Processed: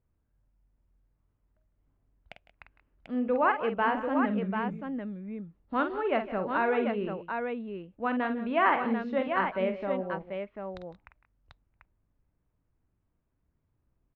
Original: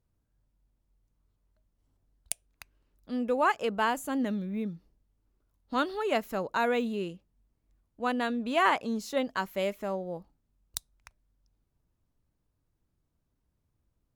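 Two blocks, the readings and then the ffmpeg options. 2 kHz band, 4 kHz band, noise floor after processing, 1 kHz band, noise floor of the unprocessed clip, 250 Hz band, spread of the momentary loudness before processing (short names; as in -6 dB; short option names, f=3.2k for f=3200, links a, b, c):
+1.0 dB, -7.0 dB, -77 dBFS, +1.5 dB, -78 dBFS, +1.5 dB, 13 LU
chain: -af "lowpass=f=2.5k:w=0.5412,lowpass=f=2.5k:w=1.3066,aecho=1:1:48|156|179|741:0.376|0.133|0.15|0.531"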